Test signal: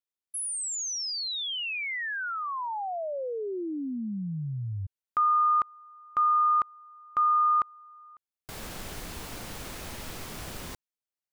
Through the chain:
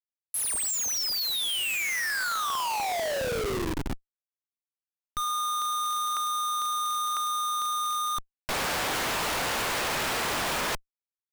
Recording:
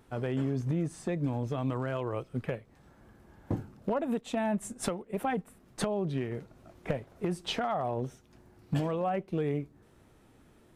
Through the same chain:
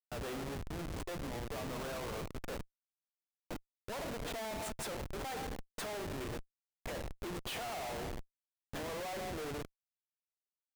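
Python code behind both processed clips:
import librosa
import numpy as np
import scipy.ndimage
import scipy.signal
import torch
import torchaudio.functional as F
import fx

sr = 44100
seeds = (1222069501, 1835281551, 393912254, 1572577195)

y = scipy.signal.sosfilt(scipy.signal.butter(2, 650.0, 'highpass', fs=sr, output='sos'), x)
y = fx.rev_spring(y, sr, rt60_s=1.2, pass_ms=(34, 50), chirp_ms=65, drr_db=7.5)
y = fx.schmitt(y, sr, flips_db=-42.5)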